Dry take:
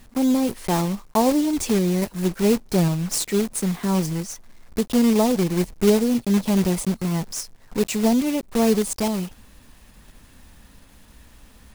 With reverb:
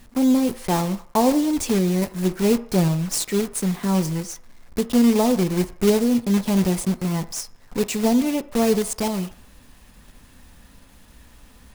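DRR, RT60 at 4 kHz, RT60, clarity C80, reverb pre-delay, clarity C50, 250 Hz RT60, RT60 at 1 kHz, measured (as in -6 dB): 11.0 dB, 0.60 s, 0.60 s, 19.5 dB, 3 ms, 16.0 dB, 0.40 s, 0.60 s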